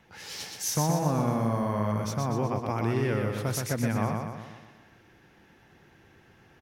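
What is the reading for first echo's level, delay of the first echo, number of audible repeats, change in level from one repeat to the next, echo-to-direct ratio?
-4.0 dB, 0.123 s, 6, -5.5 dB, -2.5 dB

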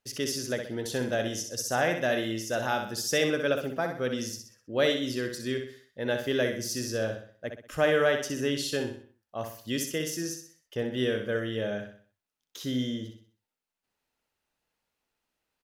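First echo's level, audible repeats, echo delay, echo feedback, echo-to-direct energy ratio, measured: -6.5 dB, 4, 63 ms, 41%, -5.5 dB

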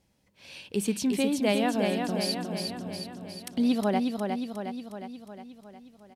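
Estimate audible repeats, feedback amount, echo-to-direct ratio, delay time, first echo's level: 7, 59%, -2.5 dB, 0.36 s, -4.5 dB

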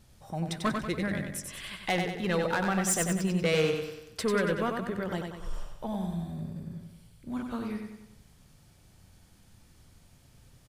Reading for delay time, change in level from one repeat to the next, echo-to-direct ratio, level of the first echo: 94 ms, -6.0 dB, -4.0 dB, -5.0 dB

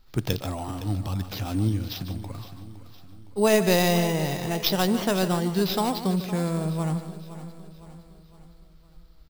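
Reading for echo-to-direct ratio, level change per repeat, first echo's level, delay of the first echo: -9.5 dB, no steady repeat, -12.0 dB, 0.149 s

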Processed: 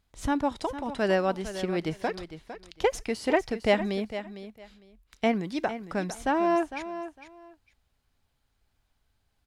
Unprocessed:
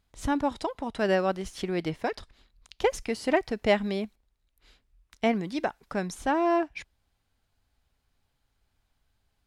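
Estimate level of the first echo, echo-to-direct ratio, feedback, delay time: -12.0 dB, -12.0 dB, 19%, 0.455 s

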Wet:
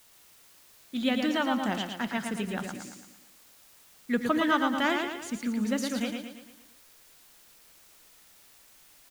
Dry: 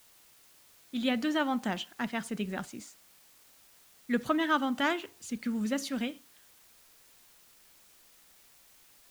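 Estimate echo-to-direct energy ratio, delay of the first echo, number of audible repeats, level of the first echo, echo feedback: -4.0 dB, 0.113 s, 5, -5.0 dB, 48%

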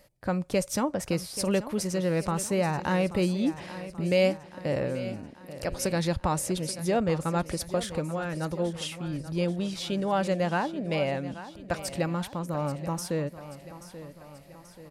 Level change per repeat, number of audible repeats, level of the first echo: -5.5 dB, 4, -14.0 dB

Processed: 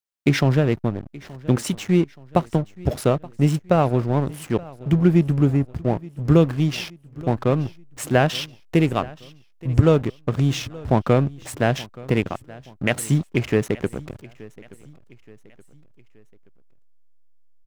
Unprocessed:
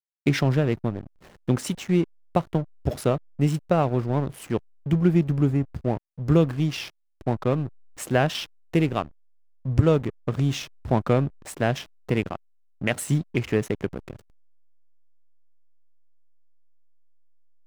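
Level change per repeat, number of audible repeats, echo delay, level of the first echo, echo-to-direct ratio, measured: -7.0 dB, 2, 0.875 s, -21.0 dB, -20.0 dB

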